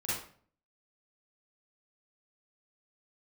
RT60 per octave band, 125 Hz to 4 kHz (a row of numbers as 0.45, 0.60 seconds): 0.65, 0.60, 0.50, 0.45, 0.45, 0.35 seconds